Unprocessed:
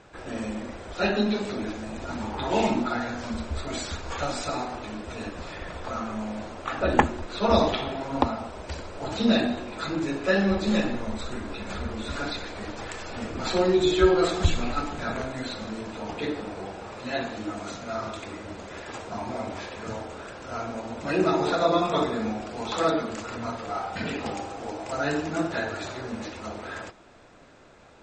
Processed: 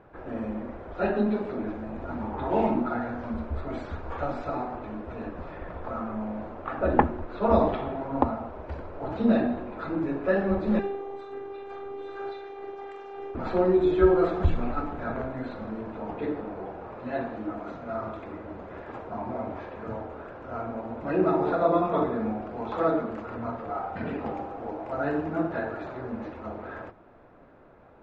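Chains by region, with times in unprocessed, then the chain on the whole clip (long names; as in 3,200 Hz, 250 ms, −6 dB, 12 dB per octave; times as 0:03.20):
0:10.79–0:13.35: high-pass filter 230 Hz + phases set to zero 396 Hz + double-tracking delay 45 ms −5.5 dB
whole clip: low-pass filter 1,300 Hz 12 dB per octave; mains-hum notches 50/100/150/200 Hz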